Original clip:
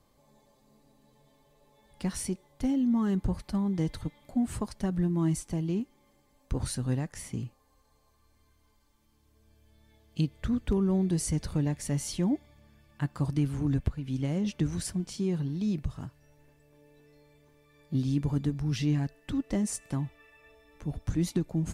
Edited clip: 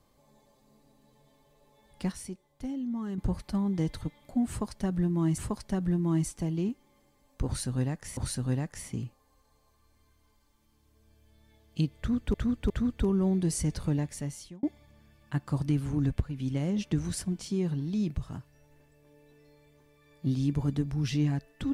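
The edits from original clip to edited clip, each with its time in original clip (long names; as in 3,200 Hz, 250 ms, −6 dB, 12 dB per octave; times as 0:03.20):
0:02.12–0:03.18: clip gain −7.5 dB
0:04.49–0:05.38: repeat, 2 plays
0:06.57–0:07.28: repeat, 2 plays
0:10.38–0:10.74: repeat, 3 plays
0:11.62–0:12.31: fade out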